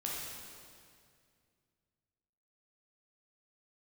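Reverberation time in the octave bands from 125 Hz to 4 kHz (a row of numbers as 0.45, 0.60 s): 3.0, 2.6, 2.3, 2.1, 2.0, 1.9 s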